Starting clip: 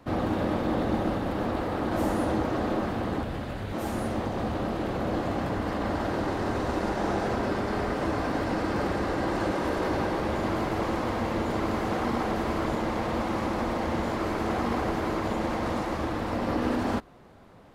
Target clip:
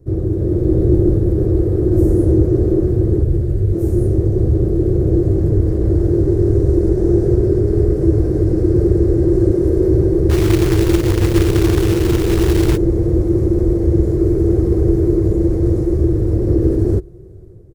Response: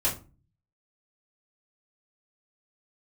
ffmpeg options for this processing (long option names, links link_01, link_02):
-filter_complex "[0:a]dynaudnorm=framelen=370:gausssize=3:maxgain=6dB,firequalizer=gain_entry='entry(120,0);entry(250,-22);entry(350,5);entry(550,-14);entry(860,-29);entry(1700,-24);entry(2900,-29);entry(5500,-15);entry(8500,-9)':delay=0.05:min_phase=1,acontrast=36,lowshelf=frequency=370:gain=10.5,asplit=3[link_01][link_02][link_03];[link_01]afade=type=out:start_time=10.29:duration=0.02[link_04];[link_02]acrusher=bits=3:mode=log:mix=0:aa=0.000001,afade=type=in:start_time=10.29:duration=0.02,afade=type=out:start_time=12.76:duration=0.02[link_05];[link_03]afade=type=in:start_time=12.76:duration=0.02[link_06];[link_04][link_05][link_06]amix=inputs=3:normalize=0"